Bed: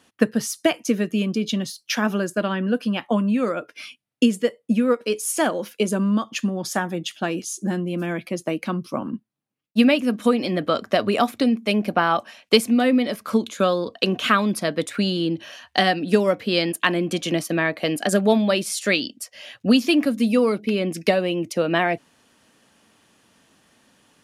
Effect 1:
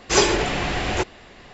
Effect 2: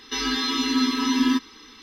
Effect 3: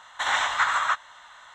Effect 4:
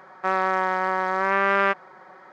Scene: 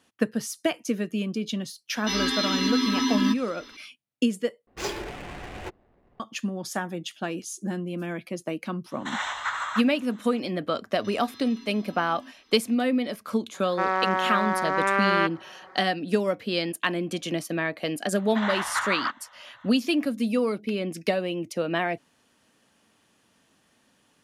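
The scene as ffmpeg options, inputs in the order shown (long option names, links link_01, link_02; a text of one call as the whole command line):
ffmpeg -i bed.wav -i cue0.wav -i cue1.wav -i cue2.wav -i cue3.wav -filter_complex "[2:a]asplit=2[link_01][link_02];[3:a]asplit=2[link_03][link_04];[0:a]volume=-6dB[link_05];[link_01]alimiter=limit=-14.5dB:level=0:latency=1:release=71[link_06];[1:a]adynamicsmooth=sensitivity=3.5:basefreq=640[link_07];[link_02]acompressor=threshold=-30dB:ratio=6:attack=3.2:release=140:knee=1:detection=peak[link_08];[link_04]lowpass=3000[link_09];[link_05]asplit=2[link_10][link_11];[link_10]atrim=end=4.674[link_12];[link_07]atrim=end=1.53,asetpts=PTS-STARTPTS,volume=-14dB[link_13];[link_11]atrim=start=6.196[link_14];[link_06]atrim=end=1.82,asetpts=PTS-STARTPTS,volume=-1dB,afade=type=in:duration=0.004:curve=hsin,afade=type=out:start_time=1.816:duration=0.004:curve=hsin,adelay=1950[link_15];[link_03]atrim=end=1.54,asetpts=PTS-STARTPTS,volume=-6.5dB,afade=type=in:duration=0.004:curve=hsin,afade=type=out:start_time=1.536:duration=0.004:curve=hsin,adelay=8860[link_16];[link_08]atrim=end=1.82,asetpts=PTS-STARTPTS,volume=-15dB,afade=type=in:duration=0.004:curve=hsin,afade=type=out:start_time=1.816:duration=0.004:curve=hsin,adelay=10930[link_17];[4:a]atrim=end=2.32,asetpts=PTS-STARTPTS,volume=-2dB,afade=type=in:duration=0.004:curve=hsin,afade=type=out:start_time=2.316:duration=0.004:curve=hsin,adelay=13540[link_18];[link_09]atrim=end=1.54,asetpts=PTS-STARTPTS,volume=-4.5dB,afade=type=in:duration=0.004:curve=hsin,afade=type=out:start_time=1.536:duration=0.004:curve=hsin,adelay=18160[link_19];[link_12][link_13]acrossfade=duration=0.004:curve1=hsin:curve2=hsin[link_20];[link_20][link_14]acrossfade=duration=0.004:curve1=hsin:curve2=hsin[link_21];[link_21][link_15][link_16][link_17][link_18][link_19]amix=inputs=6:normalize=0" out.wav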